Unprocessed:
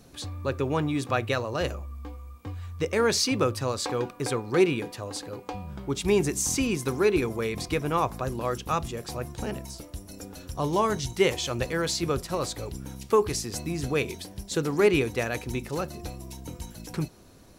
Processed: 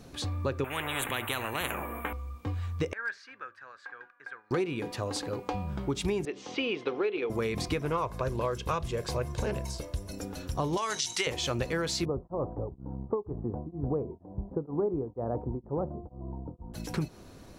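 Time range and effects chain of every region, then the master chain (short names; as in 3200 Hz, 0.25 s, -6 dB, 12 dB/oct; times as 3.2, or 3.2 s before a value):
0.64–2.13 Butterworth band-stop 5100 Hz, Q 0.56 + spectral compressor 10:1
2.93–4.51 band-pass 1600 Hz, Q 12 + hard clip -29.5 dBFS
6.25–7.3 speaker cabinet 420–3700 Hz, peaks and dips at 470 Hz +6 dB, 1000 Hz -5 dB, 1600 Hz -4 dB, 3100 Hz +6 dB + mismatched tape noise reduction decoder only
7.85–10.12 comb 1.9 ms, depth 49% + Doppler distortion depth 0.19 ms
10.77–11.27 weighting filter ITU-R 468 + compressor 2.5:1, threshold -24 dBFS
12.05–16.74 steep low-pass 1000 Hz + beating tremolo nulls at 2.1 Hz
whole clip: high shelf 6600 Hz -8 dB; compressor 10:1, threshold -30 dBFS; gain +3.5 dB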